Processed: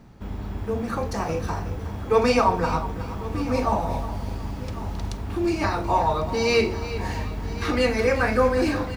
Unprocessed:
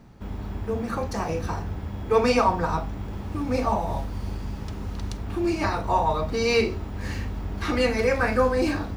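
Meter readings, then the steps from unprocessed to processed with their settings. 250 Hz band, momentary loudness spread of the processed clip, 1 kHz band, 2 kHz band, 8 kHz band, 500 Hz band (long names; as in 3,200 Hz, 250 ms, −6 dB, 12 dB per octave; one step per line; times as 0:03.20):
+1.0 dB, 12 LU, +1.5 dB, +1.5 dB, +1.5 dB, +1.5 dB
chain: on a send: single-tap delay 1,100 ms −16 dB
on the sum: feedback echo at a low word length 367 ms, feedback 35%, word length 8 bits, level −13 dB
level +1 dB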